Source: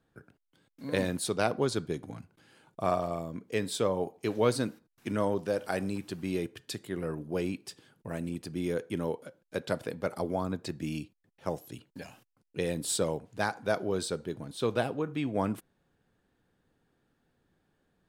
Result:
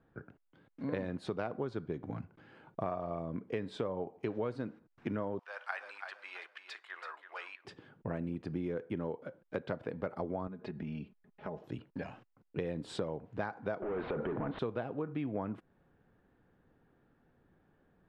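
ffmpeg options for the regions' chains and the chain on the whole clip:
-filter_complex "[0:a]asettb=1/sr,asplit=3[a][b][c];[a]atrim=end=5.394[d];[b]atrim=start=5.39:end=7.65,asetpts=PTS-STARTPTS,afade=t=in:d=0.004:c=qsin,afade=t=out:st=2.256:d=0.004:c=qsin,highpass=f=1k:w=0.5412,highpass=f=1k:w=1.3066,aecho=1:1:330|660|990:0.335|0.104|0.0322,atrim=end_sample=99666[e];[c]atrim=start=7.646[f];[d][e]acrossfade=d=0.004:c1=hsin:c2=qsin[g];[g][f]acrossfade=d=0.004:c1=qsin:c2=hsin,asettb=1/sr,asplit=3[h][i][j];[h]atrim=end=10.474[k];[i]atrim=start=10.47:end=11.64,asetpts=PTS-STARTPTS,afade=t=in:d=0.004:c=qsin,afade=t=out:st=1.166:d=0.004:c=qsin,lowpass=4.7k,aecho=1:1:4.8:0.75,atrim=end_sample=51597,acompressor=threshold=-42dB:ratio=4:attack=3.2:release=140:knee=1:detection=peak[l];[j]atrim=start=11.636[m];[k][l]acrossfade=d=0.004:c1=hsin:c2=qsin[n];[n][m]acrossfade=d=0.004:c1=qsin:c2=hsin,asettb=1/sr,asplit=3[o][p][q];[o]atrim=end=13.824[r];[p]atrim=start=13.82:end=14.59,asetpts=PTS-STARTPTS,afade=t=in:d=0.004:c=qsin,afade=t=out:st=0.766:d=0.004:c=qsin,asplit=2[s][t];[t]highpass=f=720:p=1,volume=30dB,asoftclip=type=tanh:threshold=-19.5dB[u];[s][u]amix=inputs=2:normalize=0,lowpass=f=1.4k:p=1,volume=-6dB,lowpass=f=3k:w=0.5412,lowpass=f=3k:w=1.3066,acompressor=threshold=-31dB:ratio=6:attack=3.2:release=140:knee=1:detection=peak[v];[q]atrim=start=14.586[w];[r][v]acrossfade=d=0.004:c1=hsin:c2=qsin[x];[x][w]acrossfade=d=0.004:c1=qsin:c2=hsin,lowpass=1.9k,acompressor=threshold=-38dB:ratio=6,volume=4.5dB"

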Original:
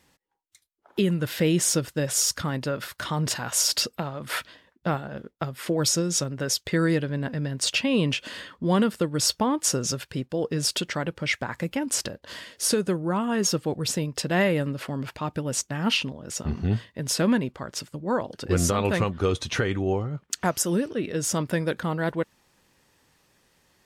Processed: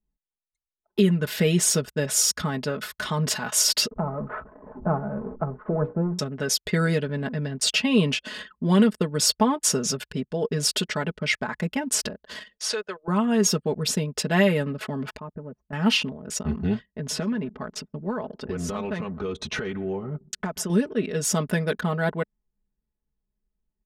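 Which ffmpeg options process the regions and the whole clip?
-filter_complex "[0:a]asettb=1/sr,asplit=3[a][b][c];[a]atrim=end=3.914[d];[b]atrim=start=3.91:end=6.19,asetpts=PTS-STARTPTS,afade=t=in:d=0.004:c=qsin,afade=t=out:st=2.276:d=0.004:c=qsin,aeval=exprs='val(0)+0.5*0.0251*sgn(val(0))':c=same,lowpass=f=1.2k:w=0.5412,lowpass=f=1.2k:w=1.3066,bandreject=f=60:t=h:w=6,bandreject=f=120:t=h:w=6,bandreject=f=180:t=h:w=6,bandreject=f=240:t=h:w=6,bandreject=f=300:t=h:w=6,bandreject=f=360:t=h:w=6,bandreject=f=420:t=h:w=6,bandreject=f=480:t=h:w=6,bandreject=f=540:t=h:w=6[e];[c]atrim=start=6.186[f];[d][e]acrossfade=d=0.004:c1=hsin:c2=qsin[g];[g][f]acrossfade=d=0.004:c1=qsin:c2=hsin,asettb=1/sr,asplit=3[h][i][j];[h]atrim=end=12.574[k];[i]atrim=start=12.57:end=13.08,asetpts=PTS-STARTPTS,afade=t=in:d=0.004:c=qsin,afade=t=out:st=0.506:d=0.004:c=qsin,highpass=f=280:p=1,acrossover=split=500 6500:gain=0.0794 1 0.112[l][m][n];[l][m][n]amix=inputs=3:normalize=0[o];[j]atrim=start=13.076[p];[k][o]acrossfade=d=0.004:c1=hsin:c2=qsin[q];[q][p]acrossfade=d=0.004:c1=qsin:c2=hsin,asettb=1/sr,asplit=3[r][s][t];[r]atrim=end=15.194[u];[s]atrim=start=15.19:end=15.73,asetpts=PTS-STARTPTS,afade=t=in:d=0.004:c=qsin,afade=t=out:st=0.536:d=0.004:c=qsin,lowpass=1.3k,acompressor=threshold=-49dB:ratio=1.5:attack=3.2:release=140:knee=1:detection=peak[v];[t]atrim=start=15.726[w];[u][v]acrossfade=d=0.004:c1=hsin:c2=qsin[x];[x][w]acrossfade=d=0.004:c1=qsin:c2=hsin,asettb=1/sr,asplit=3[y][z][aa];[y]atrim=end=16.854[ab];[z]atrim=start=16.85:end=20.7,asetpts=PTS-STARTPTS,afade=t=in:d=0.004:c=qsin,afade=t=out:st=3.846:d=0.004:c=qsin,lowpass=f=3.9k:p=1,acompressor=threshold=-26dB:ratio=10:attack=3.2:release=140:knee=1:detection=peak,asplit=2[ac][ad];[ad]adelay=125,lowpass=f=2.3k:p=1,volume=-18dB,asplit=2[ae][af];[af]adelay=125,lowpass=f=2.3k:p=1,volume=0.47,asplit=2[ag][ah];[ah]adelay=125,lowpass=f=2.3k:p=1,volume=0.47,asplit=2[ai][aj];[aj]adelay=125,lowpass=f=2.3k:p=1,volume=0.47[ak];[ac][ae][ag][ai][ak]amix=inputs=5:normalize=0,atrim=end_sample=169785[al];[aa]atrim=start=20.696[am];[ab][al]acrossfade=d=0.004:c1=hsin:c2=qsin[an];[an][am]acrossfade=d=0.004:c1=qsin:c2=hsin,anlmdn=0.631,aecho=1:1:4.7:0.76"

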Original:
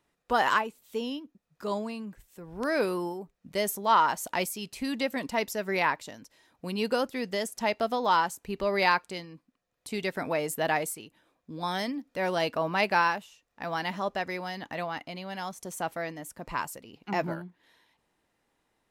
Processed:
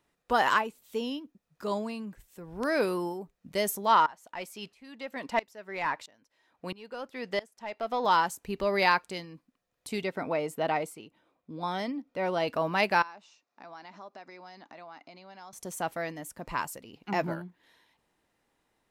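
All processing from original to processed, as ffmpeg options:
-filter_complex "[0:a]asettb=1/sr,asplit=3[a][b][c];[a]atrim=end=4.064[d];[b]atrim=start=4.06:end=8.05,asetpts=PTS-STARTPTS,afade=t=in:d=0.004:c=qsin,afade=t=out:st=3.986:d=0.004:c=qsin,asplit=2[e][f];[f]highpass=f=720:p=1,volume=11dB,asoftclip=type=tanh:threshold=-11.5dB[g];[e][g]amix=inputs=2:normalize=0,lowpass=f=2.1k:p=1,volume=-6dB,aeval=exprs='val(0)*pow(10,-22*if(lt(mod(-1.5*n/s,1),2*abs(-1.5)/1000),1-mod(-1.5*n/s,1)/(2*abs(-1.5)/1000),(mod(-1.5*n/s,1)-2*abs(-1.5)/1000)/(1-2*abs(-1.5)/1000))/20)':c=same[h];[c]atrim=start=8.046[i];[d][h]acrossfade=d=0.004:c1=hsin:c2=qsin[j];[j][i]acrossfade=d=0.004:c1=qsin:c2=hsin,asettb=1/sr,asplit=3[k][l][m];[k]atrim=end=10.034[n];[l]atrim=start=10.03:end=12.48,asetpts=PTS-STARTPTS,afade=t=in:d=0.004:c=qsin,afade=t=out:st=2.446:d=0.004:c=qsin,lowpass=f=2.3k:p=1,lowshelf=f=70:g=-11.5,bandreject=f=1.7k:w=8.2[o];[m]atrim=start=12.476[p];[n][o]acrossfade=d=0.004:c1=hsin:c2=qsin[q];[q][p]acrossfade=d=0.004:c1=qsin:c2=hsin,asettb=1/sr,asplit=3[r][s][t];[r]atrim=end=13.024[u];[s]atrim=start=13.02:end=15.53,asetpts=PTS-STARTPTS,afade=t=in:d=0.004:c=qsin,afade=t=out:st=2.506:d=0.004:c=qsin,acompressor=threshold=-45dB:ratio=3:attack=3.2:release=140:knee=1:detection=peak,highpass=280,equalizer=f=480:t=q:w=4:g=-7,equalizer=f=1.8k:t=q:w=4:g=-6,equalizer=f=3.1k:t=q:w=4:g=-9,lowpass=f=6.1k:w=0.5412,lowpass=f=6.1k:w=1.3066[v];[t]atrim=start=15.526[w];[u][v]acrossfade=d=0.004:c1=hsin:c2=qsin[x];[x][w]acrossfade=d=0.004:c1=qsin:c2=hsin"

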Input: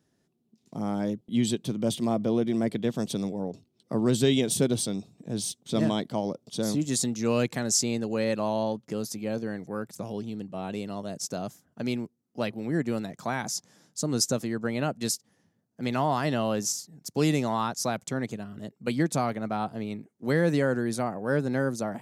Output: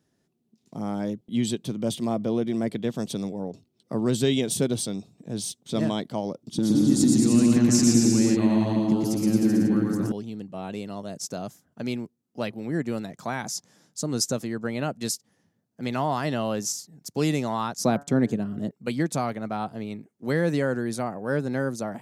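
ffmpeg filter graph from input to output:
-filter_complex "[0:a]asettb=1/sr,asplit=3[a][b][c];[a]atrim=end=6.434[d];[b]atrim=start=6.43:end=10.12,asetpts=PTS-STARTPTS,afade=t=in:d=0.004:c=qsin,afade=t=out:st=3.686:d=0.004:c=qsin,lowshelf=f=400:t=q:w=3:g=8.5,acompressor=threshold=-20dB:ratio=4:attack=3.2:release=140:knee=1:detection=peak,aecho=1:1:120|222|308.7|382.4|445|498.3|543.5:0.794|0.631|0.501|0.398|0.316|0.251|0.2,atrim=end_sample=162729[e];[c]atrim=start=10.116[f];[d][e]acrossfade=d=0.004:c1=hsin:c2=qsin[g];[g][f]acrossfade=d=0.004:c1=qsin:c2=hsin,asettb=1/sr,asplit=3[h][i][j];[h]atrim=end=17.774[k];[i]atrim=start=17.77:end=18.71,asetpts=PTS-STARTPTS,afade=t=in:d=0.004:c=qsin,afade=t=out:st=0.936:d=0.004:c=qsin,equalizer=f=240:t=o:w=2.9:g=10.5,bandreject=f=142.2:t=h:w=4,bandreject=f=284.4:t=h:w=4,bandreject=f=426.6:t=h:w=4,bandreject=f=568.8:t=h:w=4,bandreject=f=711:t=h:w=4,bandreject=f=853.2:t=h:w=4,bandreject=f=995.4:t=h:w=4,bandreject=f=1.1376k:t=h:w=4,bandreject=f=1.2798k:t=h:w=4,bandreject=f=1.422k:t=h:w=4,bandreject=f=1.5642k:t=h:w=4,bandreject=f=1.7064k:t=h:w=4,bandreject=f=1.8486k:t=h:w=4,agate=range=-8dB:threshold=-40dB:ratio=16:release=100:detection=peak[l];[j]atrim=start=18.706[m];[k][l]acrossfade=d=0.004:c1=hsin:c2=qsin[n];[n][m]acrossfade=d=0.004:c1=qsin:c2=hsin"

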